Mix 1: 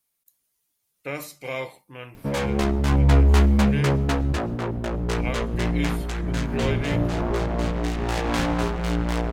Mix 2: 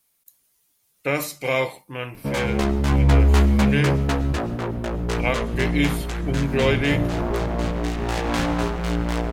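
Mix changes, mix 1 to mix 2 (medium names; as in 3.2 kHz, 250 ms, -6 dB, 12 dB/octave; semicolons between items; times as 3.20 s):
speech +8.5 dB; background: send +8.0 dB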